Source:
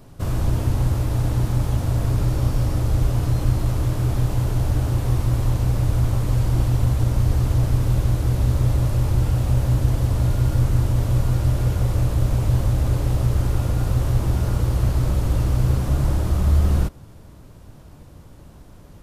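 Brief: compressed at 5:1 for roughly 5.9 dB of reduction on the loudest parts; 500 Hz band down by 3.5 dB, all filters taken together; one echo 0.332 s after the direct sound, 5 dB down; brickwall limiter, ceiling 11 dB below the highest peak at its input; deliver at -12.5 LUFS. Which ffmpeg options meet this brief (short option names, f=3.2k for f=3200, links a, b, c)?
-af "equalizer=f=500:t=o:g=-4.5,acompressor=threshold=-20dB:ratio=5,alimiter=limit=-23dB:level=0:latency=1,aecho=1:1:332:0.562,volume=19dB"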